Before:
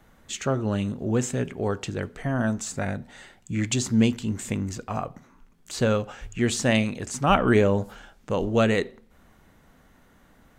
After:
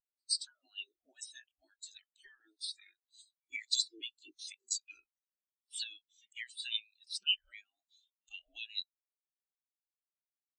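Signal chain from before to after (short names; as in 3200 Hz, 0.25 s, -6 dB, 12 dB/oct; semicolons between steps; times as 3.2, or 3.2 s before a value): low shelf 64 Hz -10.5 dB; spectral gate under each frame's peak -15 dB weak; compressor 20:1, threshold -43 dBFS, peak gain reduction 20.5 dB; graphic EQ 125/500/1000/4000/8000 Hz -12/-6/-9/+11/+10 dB; pre-echo 0.118 s -16 dB; spectral expander 4:1; gain +4 dB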